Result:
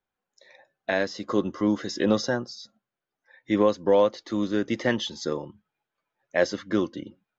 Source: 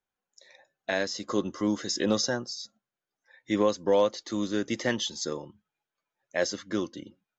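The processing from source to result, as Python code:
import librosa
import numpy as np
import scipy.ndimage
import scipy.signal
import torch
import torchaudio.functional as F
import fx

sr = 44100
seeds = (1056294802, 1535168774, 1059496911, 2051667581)

p1 = fx.high_shelf(x, sr, hz=5500.0, db=-9.0)
p2 = fx.rider(p1, sr, range_db=10, speed_s=2.0)
p3 = p1 + F.gain(torch.from_numpy(p2), 2.0).numpy()
p4 = fx.air_absorb(p3, sr, metres=84.0)
y = F.gain(torch.from_numpy(p4), -3.5).numpy()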